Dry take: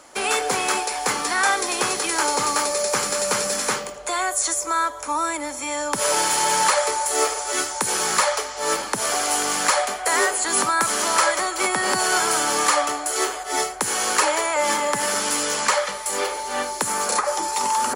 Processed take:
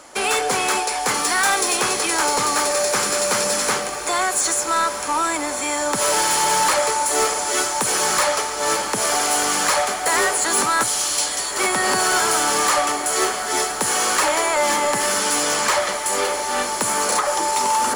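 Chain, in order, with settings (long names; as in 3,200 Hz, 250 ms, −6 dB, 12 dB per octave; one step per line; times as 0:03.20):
0:01.14–0:01.77: high-shelf EQ 6,000 Hz +6.5 dB
0:10.83–0:11.57: inverse Chebyshev band-stop filter 450–920 Hz, stop band 80 dB
soft clipping −17 dBFS, distortion −14 dB
feedback delay with all-pass diffusion 1,391 ms, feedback 68%, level −11 dB
level +4 dB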